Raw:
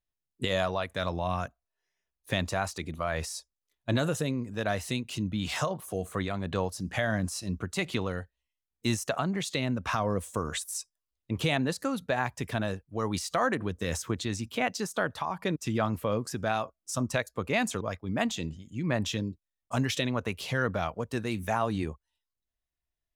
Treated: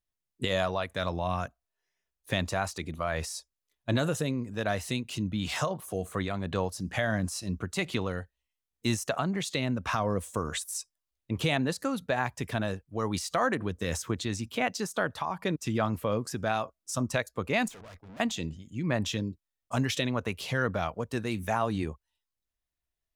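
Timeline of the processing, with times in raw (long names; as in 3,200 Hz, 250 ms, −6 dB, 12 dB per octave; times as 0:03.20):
0:17.68–0:18.20: tube saturation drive 46 dB, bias 0.4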